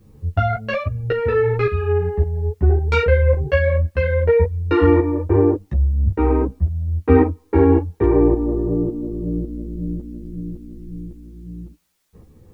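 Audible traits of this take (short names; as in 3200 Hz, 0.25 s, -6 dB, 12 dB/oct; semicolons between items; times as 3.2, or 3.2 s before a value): tremolo saw up 1.8 Hz, depth 60%; a quantiser's noise floor 12-bit, dither triangular; a shimmering, thickened sound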